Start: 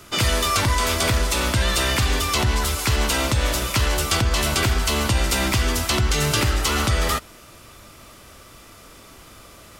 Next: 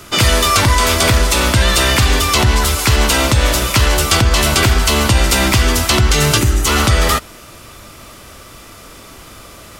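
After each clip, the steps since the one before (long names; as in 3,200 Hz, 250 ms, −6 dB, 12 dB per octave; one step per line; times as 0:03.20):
gain on a spectral selection 0:06.38–0:06.67, 410–5,700 Hz −8 dB
level +8 dB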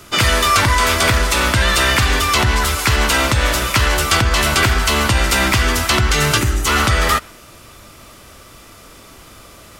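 dynamic equaliser 1,600 Hz, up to +6 dB, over −28 dBFS, Q 0.88
level −4 dB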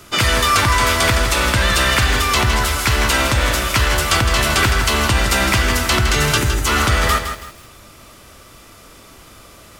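feedback echo at a low word length 162 ms, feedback 35%, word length 6 bits, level −8 dB
level −1.5 dB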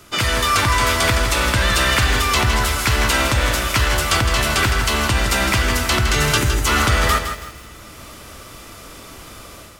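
automatic gain control gain up to 8 dB
feedback delay network reverb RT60 3.7 s, high-frequency decay 0.95×, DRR 18.5 dB
level −3.5 dB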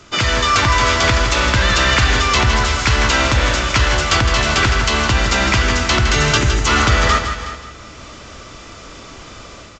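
single-tap delay 369 ms −15 dB
downsampling to 16,000 Hz
level +2.5 dB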